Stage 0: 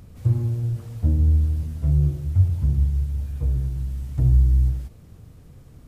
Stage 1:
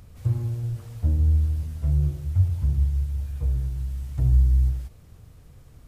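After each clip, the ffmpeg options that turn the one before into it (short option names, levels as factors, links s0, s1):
-af "equalizer=f=230:w=0.61:g=-7"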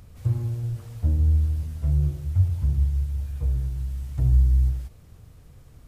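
-af anull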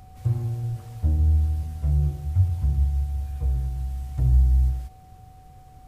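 -af "aeval=exprs='val(0)+0.00282*sin(2*PI*750*n/s)':c=same"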